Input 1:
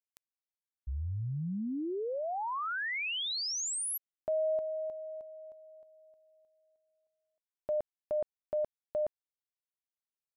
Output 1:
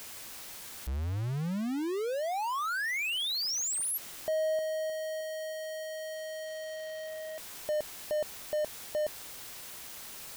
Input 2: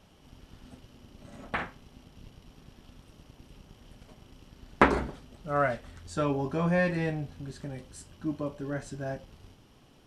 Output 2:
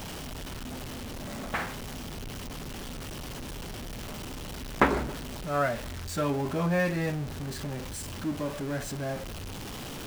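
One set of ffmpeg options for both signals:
-af "aeval=exprs='val(0)+0.5*0.0266*sgn(val(0))':c=same,volume=0.794"

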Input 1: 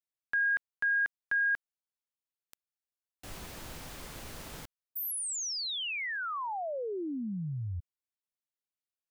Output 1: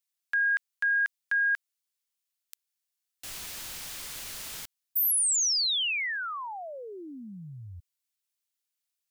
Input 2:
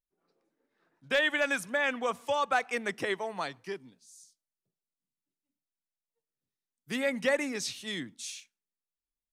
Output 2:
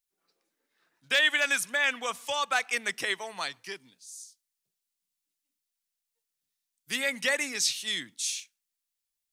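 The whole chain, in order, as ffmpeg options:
-af "tiltshelf=f=1400:g=-9,volume=1.19"

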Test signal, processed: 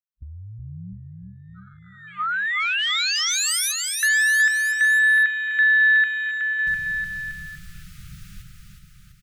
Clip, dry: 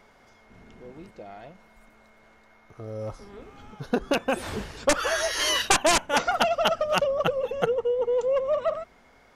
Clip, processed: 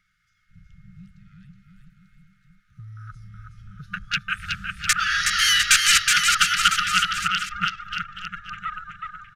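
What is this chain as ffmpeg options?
-filter_complex "[0:a]afwtdn=0.0158,afftfilt=real='re*(1-between(b*sr/4096,200,1200))':imag='im*(1-between(b*sr/4096,200,1200))':win_size=4096:overlap=0.75,acrossover=split=560|3700[s0][s1][s2];[s0]acompressor=threshold=0.00562:ratio=5[s3];[s3][s1][s2]amix=inputs=3:normalize=0,aecho=1:1:370|703|1003|1272|1515:0.631|0.398|0.251|0.158|0.1,volume=2.11"

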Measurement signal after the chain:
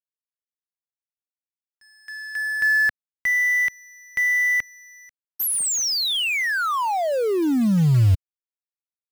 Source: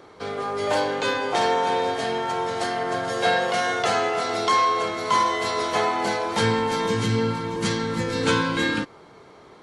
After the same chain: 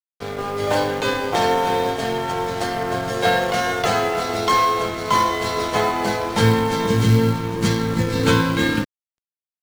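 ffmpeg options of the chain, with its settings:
-af "aeval=exprs='sgn(val(0))*max(abs(val(0))-0.0141,0)':c=same,lowshelf=f=190:g=11,acrusher=bits=6:mode=log:mix=0:aa=0.000001,volume=1.41"

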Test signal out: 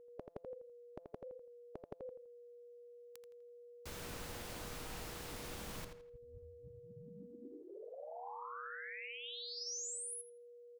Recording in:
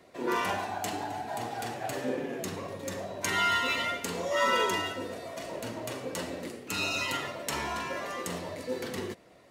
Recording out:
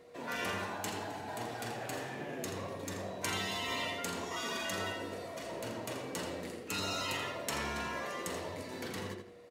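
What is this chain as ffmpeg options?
-filter_complex "[0:a]aeval=exprs='val(0)+0.00224*sin(2*PI*480*n/s)':c=same,asplit=2[s0][s1];[s1]adelay=83,lowpass=f=4900:p=1,volume=0.501,asplit=2[s2][s3];[s3]adelay=83,lowpass=f=4900:p=1,volume=0.34,asplit=2[s4][s5];[s5]adelay=83,lowpass=f=4900:p=1,volume=0.34,asplit=2[s6][s7];[s7]adelay=83,lowpass=f=4900:p=1,volume=0.34[s8];[s0][s2][s4][s6][s8]amix=inputs=5:normalize=0,afftfilt=real='re*lt(hypot(re,im),0.126)':imag='im*lt(hypot(re,im),0.126)':win_size=1024:overlap=0.75,volume=0.668"

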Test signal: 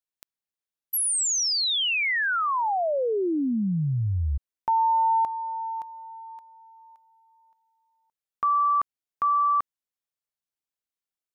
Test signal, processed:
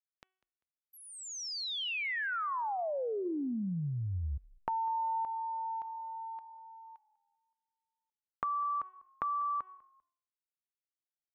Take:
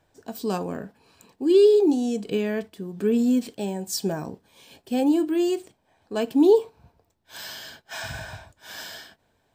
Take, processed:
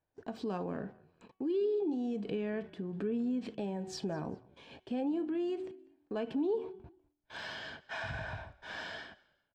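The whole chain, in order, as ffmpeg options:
-filter_complex "[0:a]agate=range=0.1:threshold=0.002:ratio=16:release=52:detection=rms,lowpass=2600,bandreject=f=375.3:t=h:w=4,bandreject=f=750.6:t=h:w=4,bandreject=f=1125.9:t=h:w=4,bandreject=f=1501.2:t=h:w=4,bandreject=f=1876.5:t=h:w=4,bandreject=f=2251.8:t=h:w=4,bandreject=f=2627.1:t=h:w=4,bandreject=f=3002.4:t=h:w=4,bandreject=f=3377.7:t=h:w=4,acompressor=threshold=0.0112:ratio=2.5:attack=11:release=84:detection=peak,asplit=3[s0][s1][s2];[s1]adelay=197,afreqshift=-41,volume=0.0708[s3];[s2]adelay=394,afreqshift=-82,volume=0.0219[s4];[s0][s3][s4]amix=inputs=3:normalize=0"

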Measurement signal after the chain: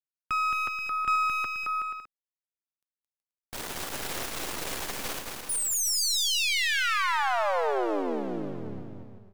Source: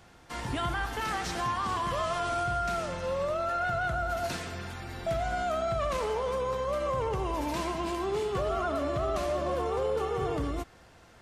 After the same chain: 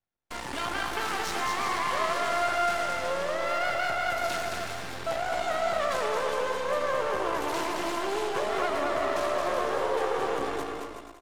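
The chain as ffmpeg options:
-filter_complex "[0:a]aeval=exprs='max(val(0),0)':c=same,acrossover=split=300[s0][s1];[s0]acompressor=threshold=0.00447:ratio=10[s2];[s2][s1]amix=inputs=2:normalize=0,agate=range=0.01:threshold=0.00316:ratio=16:detection=peak,asplit=2[s3][s4];[s4]aeval=exprs='clip(val(0),-1,0.00501)':c=same,volume=0.447[s5];[s3][s5]amix=inputs=2:normalize=0,aecho=1:1:220|374|481.8|557.3|610.1:0.631|0.398|0.251|0.158|0.1,volume=1.5"

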